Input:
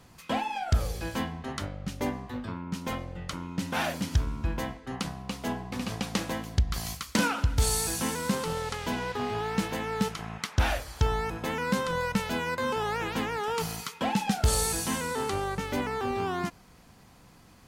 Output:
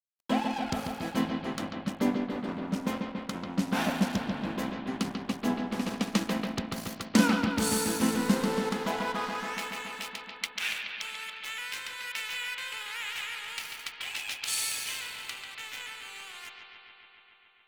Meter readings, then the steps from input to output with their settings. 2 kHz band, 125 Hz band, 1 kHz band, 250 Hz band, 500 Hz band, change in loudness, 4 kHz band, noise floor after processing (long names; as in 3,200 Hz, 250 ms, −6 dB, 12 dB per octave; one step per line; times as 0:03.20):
0.0 dB, −7.5 dB, −3.5 dB, +3.0 dB, −3.5 dB, −1.0 dB, +1.0 dB, −56 dBFS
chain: high-pass filter sweep 220 Hz → 2,400 Hz, 0:08.29–0:09.65
dead-zone distortion −37 dBFS
bucket-brigade delay 141 ms, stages 4,096, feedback 79%, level −6 dB